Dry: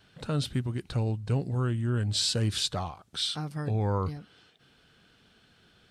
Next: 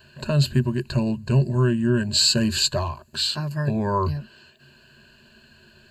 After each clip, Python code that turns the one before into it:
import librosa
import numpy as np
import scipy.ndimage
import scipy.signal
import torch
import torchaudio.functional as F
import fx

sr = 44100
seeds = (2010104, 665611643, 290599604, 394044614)

y = fx.ripple_eq(x, sr, per_octave=1.4, db=17)
y = y * librosa.db_to_amplitude(5.0)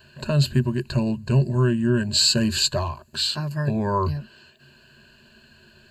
y = x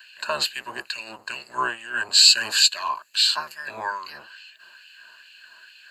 y = fx.octave_divider(x, sr, octaves=1, level_db=4.0)
y = fx.filter_lfo_highpass(y, sr, shape='sine', hz=2.3, low_hz=1000.0, high_hz=2500.0, q=2.1)
y = y * librosa.db_to_amplitude(3.5)